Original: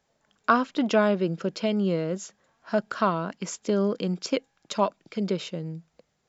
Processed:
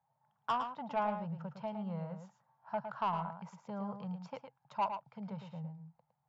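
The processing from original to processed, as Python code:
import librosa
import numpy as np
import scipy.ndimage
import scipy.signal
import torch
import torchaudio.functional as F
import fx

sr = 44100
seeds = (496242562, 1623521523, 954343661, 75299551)

p1 = fx.double_bandpass(x, sr, hz=340.0, octaves=2.7)
p2 = 10.0 ** (-28.5 / 20.0) * np.tanh(p1 / 10.0 ** (-28.5 / 20.0))
p3 = p2 + fx.echo_single(p2, sr, ms=110, db=-8.0, dry=0)
y = p3 * 10.0 ** (3.0 / 20.0)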